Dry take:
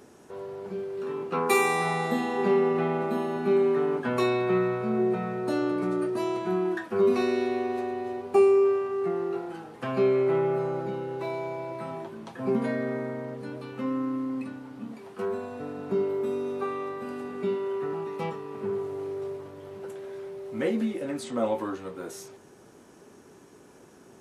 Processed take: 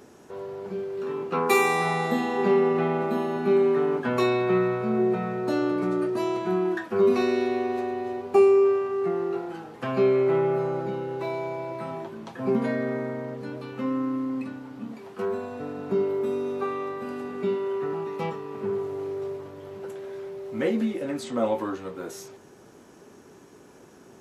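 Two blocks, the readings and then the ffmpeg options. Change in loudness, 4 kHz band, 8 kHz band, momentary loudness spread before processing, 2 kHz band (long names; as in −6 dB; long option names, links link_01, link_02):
+2.0 dB, +2.0 dB, can't be measured, 15 LU, +2.0 dB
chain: -af "equalizer=frequency=9200:width=6:gain=-9,volume=2dB"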